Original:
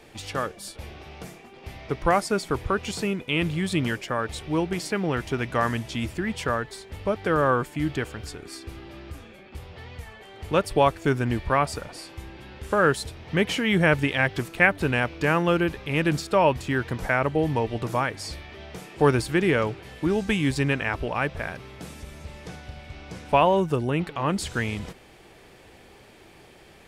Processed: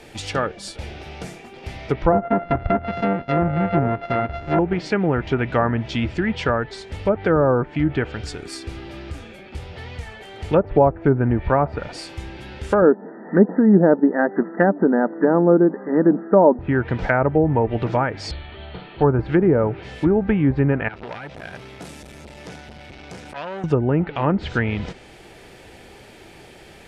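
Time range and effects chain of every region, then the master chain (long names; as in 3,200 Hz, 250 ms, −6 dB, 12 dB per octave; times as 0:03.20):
0:02.12–0:04.59: samples sorted by size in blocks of 64 samples + low-pass filter 2,200 Hz
0:12.82–0:16.59: linear-phase brick-wall band-pass 180–2,000 Hz + low-shelf EQ 260 Hz +10.5 dB
0:18.31–0:19.19: Chebyshev low-pass with heavy ripple 4,400 Hz, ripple 6 dB + low-shelf EQ 110 Hz +9.5 dB
0:20.88–0:23.64: low-shelf EQ 64 Hz −11.5 dB + downward compressor 10 to 1, threshold −29 dBFS + saturating transformer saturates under 2,700 Hz
whole clip: treble cut that deepens with the level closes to 1,500 Hz, closed at −21 dBFS; notch filter 1,100 Hz, Q 8.3; treble cut that deepens with the level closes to 840 Hz, closed at −17.5 dBFS; level +6.5 dB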